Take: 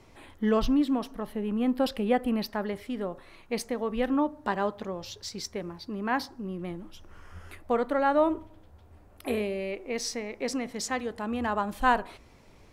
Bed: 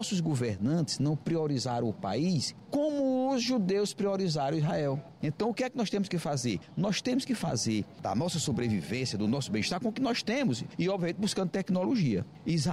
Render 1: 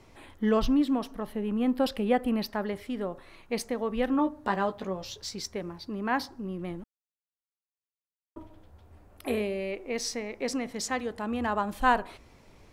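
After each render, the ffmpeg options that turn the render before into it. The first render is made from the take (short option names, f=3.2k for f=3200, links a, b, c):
-filter_complex "[0:a]asettb=1/sr,asplit=3[a][b][c];[a]atrim=end=4.174[d];[b]atrim=start=4.17:end=5.35,asetpts=PTS-STARTPTS,afade=t=in:d=0.004:c=qsin,afade=t=out:st=1.176:d=0.004:c=qsin,asplit=2[e][f];[f]adelay=16,volume=-6.5dB[g];[e][g]amix=inputs=2:normalize=0,atrim=end_sample=52038[h];[c]atrim=start=5.346[i];[d][h]acrossfade=d=0.004:c1=hsin:c2=qsin[j];[j][i]acrossfade=d=0.004:c1=qsin:c2=hsin,asplit=3[k][l][m];[k]atrim=end=6.84,asetpts=PTS-STARTPTS,afade=t=out:st=6.836:d=0.004:c=hsin[n];[l]atrim=start=6.84:end=8.36,asetpts=PTS-STARTPTS,volume=0[o];[m]atrim=start=8.36,asetpts=PTS-STARTPTS,afade=t=in:d=0.004:c=hsin[p];[n][o][p]concat=n=3:v=0:a=1"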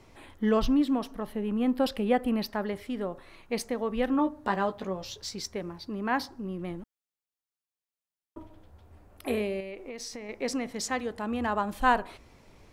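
-filter_complex "[0:a]asettb=1/sr,asplit=3[a][b][c];[a]atrim=end=9.604[d];[b]atrim=start=9.6:end=10.29,asetpts=PTS-STARTPTS,afade=t=in:d=0.004:c=qsin,afade=t=out:st=0.686:d=0.004:c=qsin,acompressor=threshold=-35dB:ratio=12:attack=3.2:release=140:knee=1:detection=peak[e];[c]atrim=start=10.286[f];[d][e]acrossfade=d=0.004:c1=hsin:c2=qsin[g];[g][f]acrossfade=d=0.004:c1=qsin:c2=hsin"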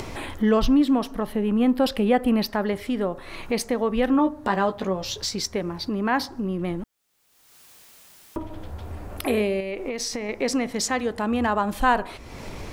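-filter_complex "[0:a]asplit=2[a][b];[b]alimiter=limit=-21dB:level=0:latency=1:release=79,volume=2.5dB[c];[a][c]amix=inputs=2:normalize=0,acompressor=mode=upward:threshold=-23dB:ratio=2.5"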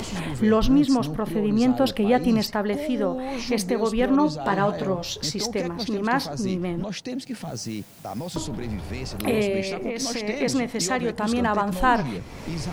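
-filter_complex "[1:a]volume=-2dB[a];[0:a][a]amix=inputs=2:normalize=0"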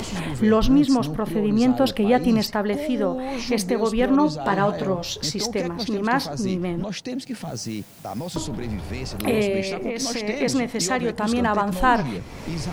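-af "volume=1.5dB"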